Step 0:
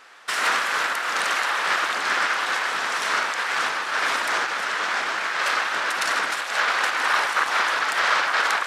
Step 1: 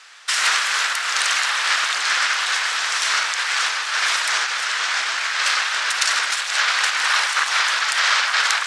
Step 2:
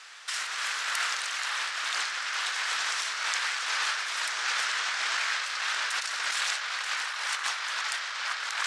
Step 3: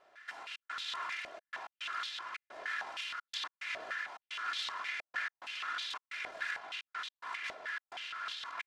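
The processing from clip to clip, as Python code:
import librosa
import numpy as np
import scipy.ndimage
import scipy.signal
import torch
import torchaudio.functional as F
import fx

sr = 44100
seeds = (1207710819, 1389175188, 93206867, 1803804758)

y1 = fx.weighting(x, sr, curve='ITU-R 468')
y1 = F.gain(torch.from_numpy(y1), -2.0).numpy()
y2 = fx.over_compress(y1, sr, threshold_db=-25.0, ratio=-1.0)
y2 = F.gain(torch.from_numpy(y2), -6.5).numpy()
y3 = fx.lower_of_two(y2, sr, delay_ms=2.9)
y3 = fx.step_gate(y3, sr, bpm=108, pattern='xxxx.xxxxx.x.', floor_db=-60.0, edge_ms=4.5)
y3 = fx.filter_held_bandpass(y3, sr, hz=6.4, low_hz=640.0, high_hz=3600.0)
y3 = F.gain(torch.from_numpy(y3), 1.0).numpy()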